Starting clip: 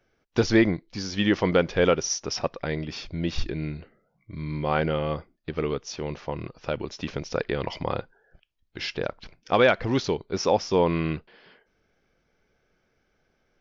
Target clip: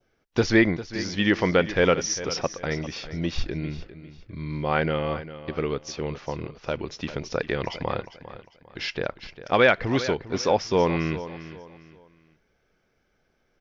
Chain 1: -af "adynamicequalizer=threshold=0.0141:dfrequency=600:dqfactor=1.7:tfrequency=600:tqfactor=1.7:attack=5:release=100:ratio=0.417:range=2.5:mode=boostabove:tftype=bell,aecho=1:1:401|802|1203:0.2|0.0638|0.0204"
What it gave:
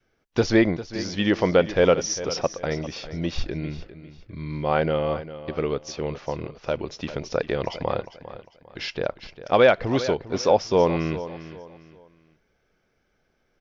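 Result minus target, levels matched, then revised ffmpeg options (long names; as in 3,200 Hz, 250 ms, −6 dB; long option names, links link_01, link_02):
2,000 Hz band −4.5 dB
-af "adynamicequalizer=threshold=0.0141:dfrequency=1900:dqfactor=1.7:tfrequency=1900:tqfactor=1.7:attack=5:release=100:ratio=0.417:range=2.5:mode=boostabove:tftype=bell,aecho=1:1:401|802|1203:0.2|0.0638|0.0204"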